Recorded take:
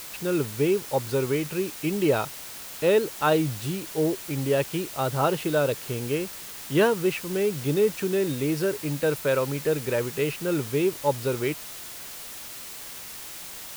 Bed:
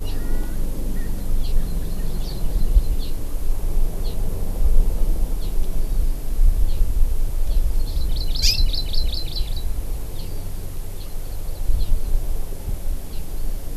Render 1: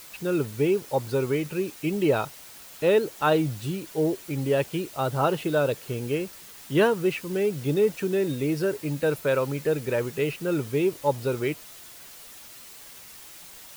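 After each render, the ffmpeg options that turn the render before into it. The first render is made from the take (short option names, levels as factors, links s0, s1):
-af "afftdn=nr=7:nf=-40"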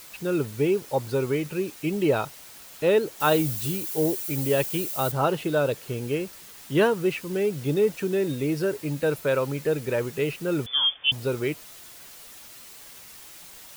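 -filter_complex "[0:a]asettb=1/sr,asplit=3[s0][s1][s2];[s0]atrim=end=3.204[s3];[s1]atrim=start=3.2:end=5.12,asetpts=PTS-STARTPTS,afade=t=in:d=0.004:c=qsin,afade=t=out:st=1.916:d=0.004:c=qsin,aemphasis=mode=production:type=50kf[s4];[s2]atrim=start=5.116[s5];[s3][s4]acrossfade=d=0.004:c1=hsin:c2=qsin[s6];[s6][s5]acrossfade=d=0.004:c1=qsin:c2=hsin,asettb=1/sr,asplit=3[s7][s8][s9];[s7]atrim=end=10.664[s10];[s8]atrim=start=10.66:end=11.12,asetpts=PTS-STARTPTS,afade=t=in:d=0.004:c=qsin,afade=t=out:st=0.456:d=0.004:c=qsin,lowpass=f=3100:t=q:w=0.5098,lowpass=f=3100:t=q:w=0.6013,lowpass=f=3100:t=q:w=0.9,lowpass=f=3100:t=q:w=2.563,afreqshift=-3600[s11];[s9]atrim=start=11.116[s12];[s10][s11]acrossfade=d=0.004:c1=hsin:c2=qsin[s13];[s13][s12]acrossfade=d=0.004:c1=qsin:c2=hsin"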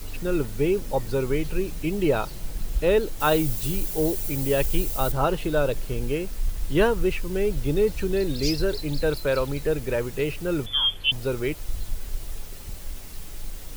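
-filter_complex "[1:a]volume=0.299[s0];[0:a][s0]amix=inputs=2:normalize=0"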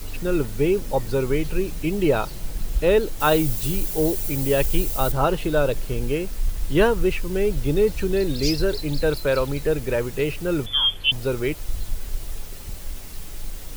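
-af "volume=1.33"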